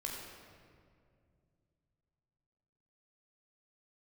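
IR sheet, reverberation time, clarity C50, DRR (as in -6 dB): 2.3 s, 1.0 dB, -2.5 dB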